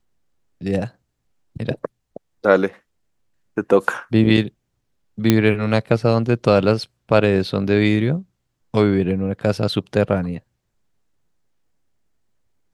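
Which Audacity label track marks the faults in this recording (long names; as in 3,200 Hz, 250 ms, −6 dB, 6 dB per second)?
5.300000	5.300000	click 0 dBFS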